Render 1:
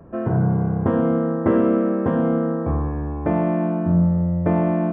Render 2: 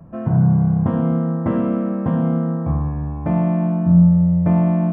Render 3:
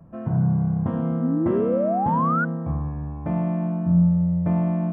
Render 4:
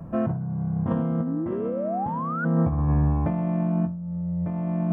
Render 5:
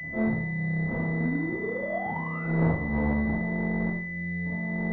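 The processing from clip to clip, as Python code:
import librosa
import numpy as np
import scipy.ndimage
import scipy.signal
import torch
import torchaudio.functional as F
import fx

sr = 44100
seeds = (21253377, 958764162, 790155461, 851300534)

y1 = fx.graphic_eq_15(x, sr, hz=(160, 400, 1600), db=(8, -11, -5))
y2 = fx.spec_paint(y1, sr, seeds[0], shape='rise', start_s=1.2, length_s=1.25, low_hz=230.0, high_hz=1500.0, level_db=-17.0)
y2 = F.gain(torch.from_numpy(y2), -6.0).numpy()
y3 = fx.over_compress(y2, sr, threshold_db=-29.0, ratio=-1.0)
y3 = F.gain(torch.from_numpy(y3), 3.5).numpy()
y4 = fx.cheby_harmonics(y3, sr, harmonics=(3, 5, 6, 8), levels_db=(-8, -16, -18, -20), full_scale_db=-12.5)
y4 = fx.rev_schroeder(y4, sr, rt60_s=0.56, comb_ms=25, drr_db=-8.0)
y4 = fx.pwm(y4, sr, carrier_hz=2000.0)
y4 = F.gain(torch.from_numpy(y4), -5.0).numpy()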